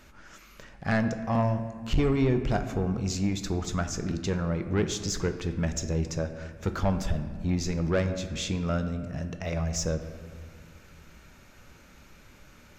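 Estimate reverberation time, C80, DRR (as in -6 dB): 1.9 s, 11.0 dB, 8.0 dB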